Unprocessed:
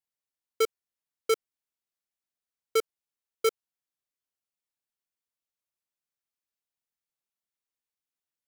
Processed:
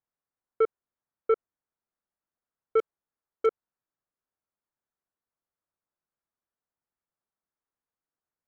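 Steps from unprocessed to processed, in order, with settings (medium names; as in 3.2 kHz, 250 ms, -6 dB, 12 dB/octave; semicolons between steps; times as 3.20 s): low-pass 1.6 kHz 24 dB/octave; in parallel at -1.5 dB: peak limiter -28.5 dBFS, peak gain reduction 9.5 dB; 2.79–3.46 s: on the sum: hard clipper -20.5 dBFS, distortion -24 dB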